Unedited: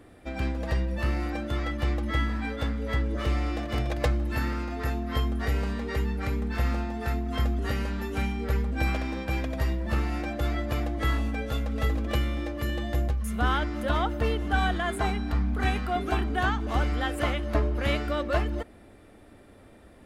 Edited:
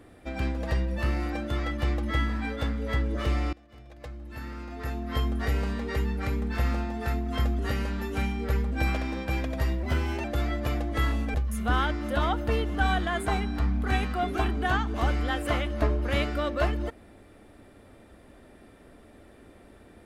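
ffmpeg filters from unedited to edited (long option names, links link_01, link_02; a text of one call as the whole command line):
ffmpeg -i in.wav -filter_complex "[0:a]asplit=5[link_01][link_02][link_03][link_04][link_05];[link_01]atrim=end=3.53,asetpts=PTS-STARTPTS,afade=type=out:start_time=3.526:duration=0.004:curve=hsin:silence=0.0630957[link_06];[link_02]atrim=start=3.53:end=9.834,asetpts=PTS-STARTPTS,afade=type=in:duration=1.73:curve=qua:silence=0.0630957[link_07];[link_03]atrim=start=9.83:end=10.3,asetpts=PTS-STARTPTS,asetrate=50274,aresample=44100[link_08];[link_04]atrim=start=10.296:end=11.402[link_09];[link_05]atrim=start=13.068[link_10];[link_06][link_07]concat=n=2:v=0:a=1[link_11];[link_11][link_08]acrossfade=duration=0.004:curve1=hsin:curve2=hsin[link_12];[link_12][link_09]acrossfade=duration=0.004:curve1=hsin:curve2=hsin[link_13];[link_13][link_10]acrossfade=duration=0.004:curve1=hsin:curve2=hsin" out.wav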